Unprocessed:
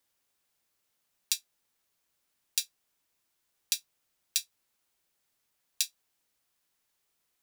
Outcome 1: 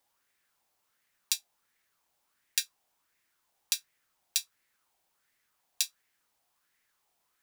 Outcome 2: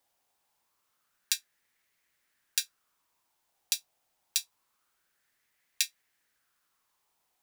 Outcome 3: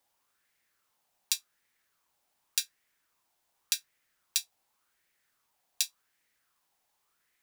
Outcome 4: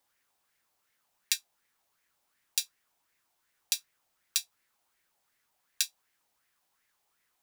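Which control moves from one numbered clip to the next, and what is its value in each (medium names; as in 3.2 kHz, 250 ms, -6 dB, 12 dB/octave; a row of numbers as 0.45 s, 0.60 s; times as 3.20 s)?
sweeping bell, rate: 1.4 Hz, 0.26 Hz, 0.88 Hz, 2.7 Hz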